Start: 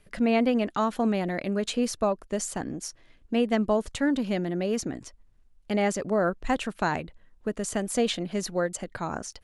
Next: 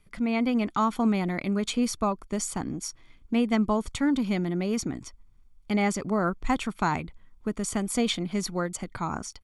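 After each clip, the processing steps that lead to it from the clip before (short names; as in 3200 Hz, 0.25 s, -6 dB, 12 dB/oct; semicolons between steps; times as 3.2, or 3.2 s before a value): comb 0.9 ms, depth 53%; AGC gain up to 5 dB; gain -5 dB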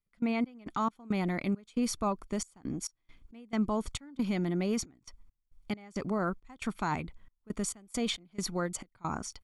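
step gate ".x.x.xx.xxx" 68 bpm -24 dB; limiter -19 dBFS, peak gain reduction 7 dB; gain -2.5 dB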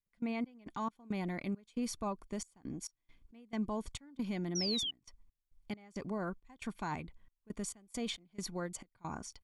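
painted sound fall, 4.55–4.91, 2900–6000 Hz -30 dBFS; Butterworth band-stop 1300 Hz, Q 7.9; gain -6.5 dB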